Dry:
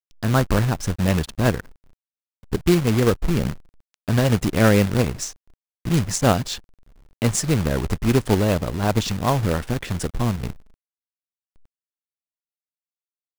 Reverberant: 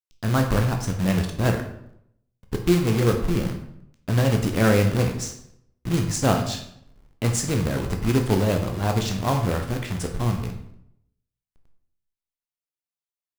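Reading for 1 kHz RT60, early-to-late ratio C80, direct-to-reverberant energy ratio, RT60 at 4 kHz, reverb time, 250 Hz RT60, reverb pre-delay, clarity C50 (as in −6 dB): 0.70 s, 11.0 dB, 3.5 dB, 0.55 s, 0.75 s, 0.85 s, 11 ms, 7.5 dB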